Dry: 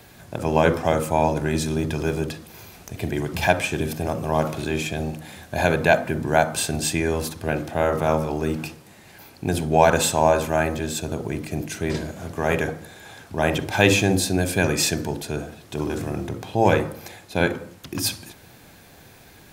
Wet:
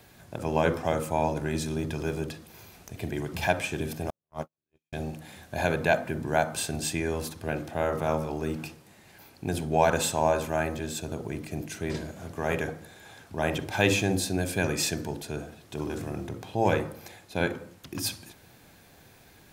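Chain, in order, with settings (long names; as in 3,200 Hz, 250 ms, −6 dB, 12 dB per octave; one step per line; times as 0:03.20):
0:04.10–0:04.93: noise gate −17 dBFS, range −60 dB
level −6.5 dB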